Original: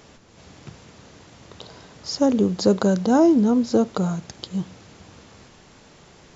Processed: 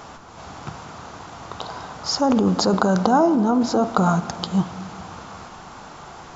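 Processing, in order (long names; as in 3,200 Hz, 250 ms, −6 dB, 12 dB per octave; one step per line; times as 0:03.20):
flat-topped bell 1,000 Hz +10.5 dB 1.3 octaves
in parallel at +2.5 dB: compressor whose output falls as the input rises −21 dBFS, ratio −0.5
on the sum: convolution reverb RT60 2.2 s, pre-delay 3 ms, DRR 12 dB
level −5 dB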